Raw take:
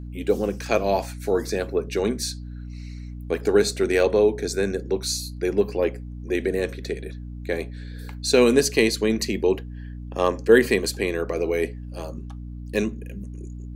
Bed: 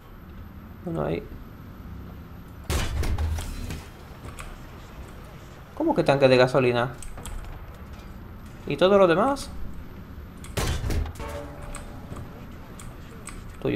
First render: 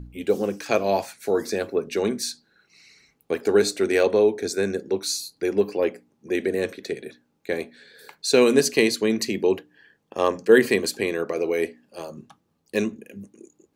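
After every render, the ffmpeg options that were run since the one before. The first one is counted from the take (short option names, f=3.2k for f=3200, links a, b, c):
-af "bandreject=f=60:t=h:w=4,bandreject=f=120:t=h:w=4,bandreject=f=180:t=h:w=4,bandreject=f=240:t=h:w=4,bandreject=f=300:t=h:w=4"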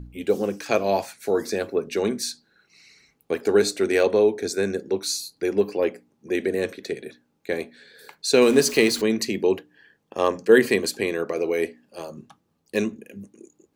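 -filter_complex "[0:a]asettb=1/sr,asplit=3[a][b][c];[a]atrim=end=8.424[d];[b]atrim=start=8.42:end=9.02,asetpts=PTS-STARTPTS,afade=t=in:d=0.004:c=qsin,afade=t=out:st=0.596:d=0.004:c=qsin,aeval=exprs='val(0)+0.5*0.0299*sgn(val(0))':c=same[e];[c]atrim=start=9.016[f];[d][e]acrossfade=d=0.004:c1=hsin:c2=qsin[g];[g][f]acrossfade=d=0.004:c1=qsin:c2=hsin"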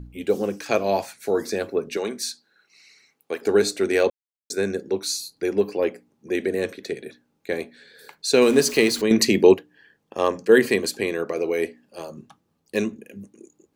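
-filter_complex "[0:a]asettb=1/sr,asplit=3[a][b][c];[a]atrim=end=1.974[d];[b]atrim=start=1.97:end=3.42,asetpts=PTS-STARTPTS,afade=t=in:d=0.004:c=qsin,afade=t=out:st=1.446:d=0.004:c=qsin,highpass=f=490:p=1[e];[c]atrim=start=3.416[f];[d][e]acrossfade=d=0.004:c1=hsin:c2=qsin[g];[g][f]acrossfade=d=0.004:c1=qsin:c2=hsin,asplit=5[h][i][j][k][l];[h]atrim=end=4.1,asetpts=PTS-STARTPTS,afade=t=out:st=4.096:d=0.004:c=hsin[m];[i]atrim=start=4.1:end=4.5,asetpts=PTS-STARTPTS,volume=0[n];[j]atrim=start=4.5:end=9.112,asetpts=PTS-STARTPTS,afade=t=in:d=0.004:c=hsin[o];[k]atrim=start=9.108:end=9.542,asetpts=PTS-STARTPTS,volume=7.5dB[p];[l]atrim=start=9.538[q];[m][n][o]concat=n=3:v=0:a=1[r];[r][p]acrossfade=d=0.004:c1=hsin:c2=hsin[s];[s][q]acrossfade=d=0.004:c1=hsin:c2=hsin"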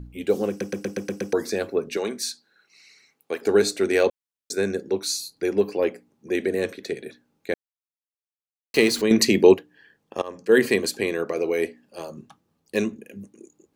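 -filter_complex "[0:a]asplit=11[a][b][c][d][e][f][g][h][i][j][k];[a]atrim=end=0.612[l];[b]atrim=start=0.488:end=0.612[m];[c]atrim=start=0.488:end=0.612[n];[d]atrim=start=0.488:end=0.612[o];[e]atrim=start=0.488:end=0.612[p];[f]atrim=start=0.488:end=0.612[q];[g]atrim=start=0.488:end=0.612[r];[h]atrim=start=1.328:end=7.54,asetpts=PTS-STARTPTS,afade=t=out:st=6.208:d=0.004:c=hsin[s];[i]atrim=start=7.54:end=8.74,asetpts=PTS-STARTPTS,volume=0[t];[j]atrim=start=8.74:end=10.22,asetpts=PTS-STARTPTS,afade=t=in:d=0.004:c=hsin,afade=t=out:st=1.476:d=0.004:c=hsin:silence=0.0707946[u];[k]atrim=start=10.22,asetpts=PTS-STARTPTS,afade=t=in:d=0.42:silence=0.0707946[v];[l][m]acrossfade=d=0.004:c1=hsin:c2=hsin[w];[w][n]acrossfade=d=0.004:c1=hsin:c2=hsin[x];[x][o]acrossfade=d=0.004:c1=hsin:c2=hsin[y];[y][p]acrossfade=d=0.004:c1=hsin:c2=hsin[z];[z][q]acrossfade=d=0.004:c1=hsin:c2=hsin[aa];[aa][r]acrossfade=d=0.004:c1=hsin:c2=hsin[ab];[s][t][u][v]concat=n=4:v=0:a=1[ac];[ab][ac]acrossfade=d=0.004:c1=hsin:c2=hsin"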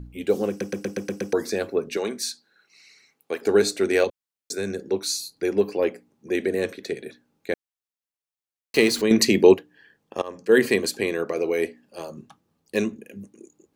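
-filter_complex "[0:a]asettb=1/sr,asplit=3[a][b][c];[a]atrim=end=4.044[d];[b]atrim=start=4.04:end=4.81,asetpts=PTS-STARTPTS,afade=t=in:d=0.004:c=qsin,afade=t=out:st=0.766:d=0.004:c=qsin,acrossover=split=160|3000[e][f][g];[f]acompressor=threshold=-28dB:ratio=2:attack=3.2:release=140:knee=2.83:detection=peak[h];[e][h][g]amix=inputs=3:normalize=0[i];[c]atrim=start=4.806[j];[d][i]acrossfade=d=0.004:c1=hsin:c2=qsin[k];[k][j]acrossfade=d=0.004:c1=qsin:c2=hsin"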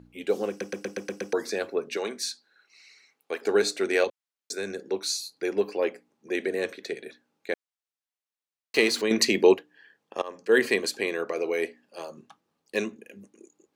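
-af "highpass=f=530:p=1,highshelf=f=9.4k:g=-10"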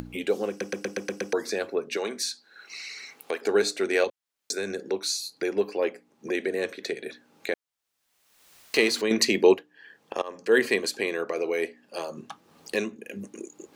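-af "acompressor=mode=upward:threshold=-25dB:ratio=2.5"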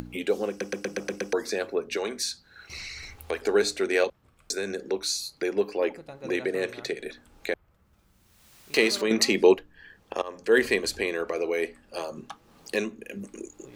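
-filter_complex "[1:a]volume=-23.5dB[a];[0:a][a]amix=inputs=2:normalize=0"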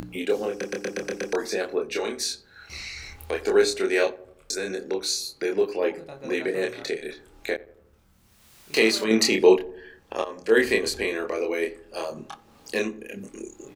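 -filter_complex "[0:a]asplit=2[a][b];[b]adelay=27,volume=-3dB[c];[a][c]amix=inputs=2:normalize=0,asplit=2[d][e];[e]adelay=88,lowpass=f=1k:p=1,volume=-17.5dB,asplit=2[f][g];[g]adelay=88,lowpass=f=1k:p=1,volume=0.55,asplit=2[h][i];[i]adelay=88,lowpass=f=1k:p=1,volume=0.55,asplit=2[j][k];[k]adelay=88,lowpass=f=1k:p=1,volume=0.55,asplit=2[l][m];[m]adelay=88,lowpass=f=1k:p=1,volume=0.55[n];[d][f][h][j][l][n]amix=inputs=6:normalize=0"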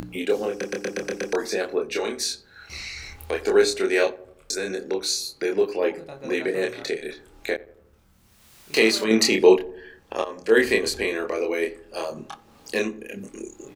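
-af "volume=1.5dB"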